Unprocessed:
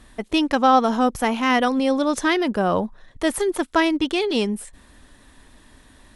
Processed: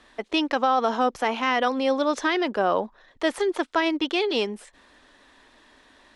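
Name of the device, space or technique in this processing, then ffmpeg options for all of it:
DJ mixer with the lows and highs turned down: -filter_complex "[0:a]acrossover=split=300 6500:gain=0.141 1 0.0891[a][b][c];[a][b][c]amix=inputs=3:normalize=0,alimiter=limit=-11.5dB:level=0:latency=1:release=39"

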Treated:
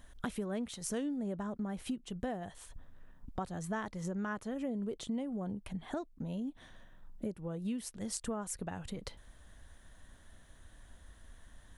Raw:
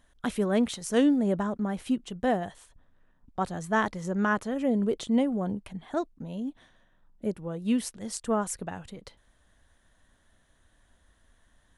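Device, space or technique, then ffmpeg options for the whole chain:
ASMR close-microphone chain: -af "lowshelf=f=140:g=6,acompressor=threshold=-41dB:ratio=5,highshelf=f=9.6k:g=4,volume=4dB"

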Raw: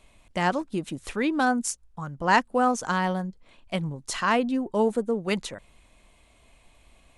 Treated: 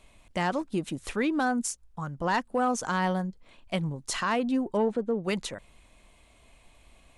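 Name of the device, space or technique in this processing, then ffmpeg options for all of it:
soft clipper into limiter: -filter_complex "[0:a]asoftclip=type=tanh:threshold=-12dB,alimiter=limit=-18.5dB:level=0:latency=1:release=104,asettb=1/sr,asplit=3[a][b][c];[a]atrim=end=4.774[d];[b]atrim=start=4.77:end=5.24,asetpts=PTS-STARTPTS,afade=t=in:d=0.004:c=qsin,afade=t=out:st=0.466:d=0.004:c=qsin,lowpass=3.8k[e];[c]atrim=start=5.236[f];[d][e]acrossfade=d=0.004:c1=hsin:c2=qsin[g];[g][f]acrossfade=d=0.004:c1=qsin:c2=hsin"

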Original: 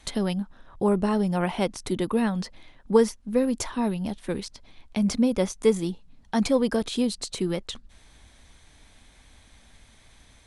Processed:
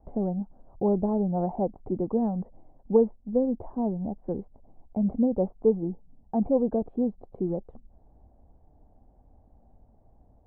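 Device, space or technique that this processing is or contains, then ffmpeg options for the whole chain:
under water: -af "lowpass=f=690:w=0.5412,lowpass=f=690:w=1.3066,equalizer=f=770:t=o:w=0.48:g=8,volume=-2dB"

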